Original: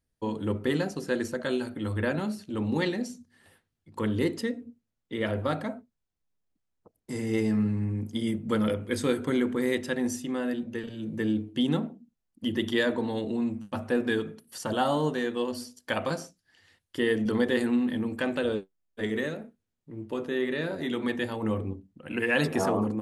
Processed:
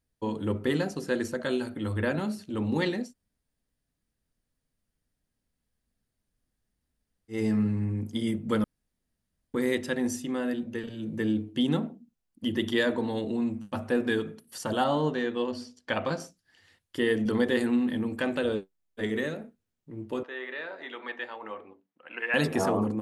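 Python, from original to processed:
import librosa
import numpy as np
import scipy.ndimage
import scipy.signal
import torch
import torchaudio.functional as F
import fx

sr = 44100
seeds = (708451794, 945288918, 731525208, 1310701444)

y = fx.lowpass(x, sr, hz=5000.0, slope=12, at=(14.84, 16.2))
y = fx.bandpass_edges(y, sr, low_hz=770.0, high_hz=2600.0, at=(20.23, 22.34))
y = fx.edit(y, sr, fx.room_tone_fill(start_s=3.06, length_s=4.3, crossfade_s=0.16),
    fx.room_tone_fill(start_s=8.64, length_s=0.9), tone=tone)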